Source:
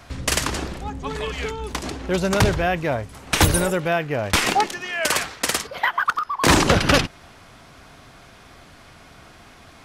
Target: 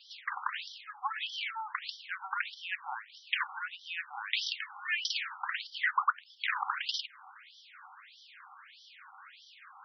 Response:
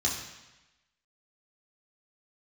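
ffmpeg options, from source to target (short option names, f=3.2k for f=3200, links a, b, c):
-af "acompressor=threshold=-23dB:ratio=6,afftfilt=real='re*between(b*sr/4096,740,9000)':imag='im*between(b*sr/4096,740,9000)':win_size=4096:overlap=0.75,afftfilt=real='re*between(b*sr/1024,990*pow(4300/990,0.5+0.5*sin(2*PI*1.6*pts/sr))/1.41,990*pow(4300/990,0.5+0.5*sin(2*PI*1.6*pts/sr))*1.41)':imag='im*between(b*sr/1024,990*pow(4300/990,0.5+0.5*sin(2*PI*1.6*pts/sr))/1.41,990*pow(4300/990,0.5+0.5*sin(2*PI*1.6*pts/sr))*1.41)':win_size=1024:overlap=0.75"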